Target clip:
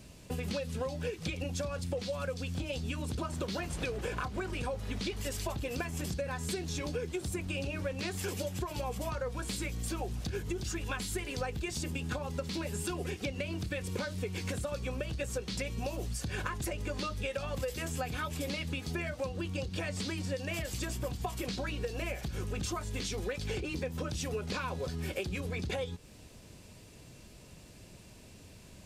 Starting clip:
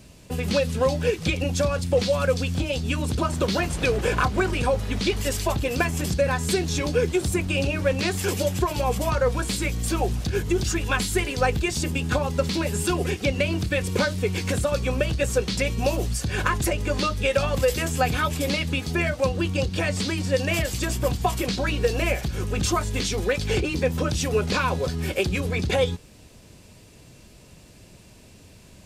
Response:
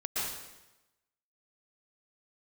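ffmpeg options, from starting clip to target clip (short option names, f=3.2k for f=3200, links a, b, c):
-af "acompressor=threshold=-29dB:ratio=6,volume=-4dB"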